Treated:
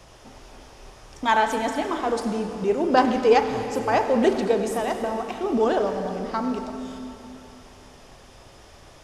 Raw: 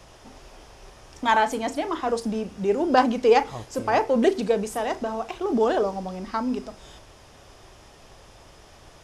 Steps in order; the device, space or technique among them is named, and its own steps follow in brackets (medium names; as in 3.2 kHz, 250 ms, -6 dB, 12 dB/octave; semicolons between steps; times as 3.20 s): saturated reverb return (on a send at -5 dB: reverberation RT60 2.9 s, pre-delay 67 ms + saturation -17.5 dBFS, distortion -14 dB)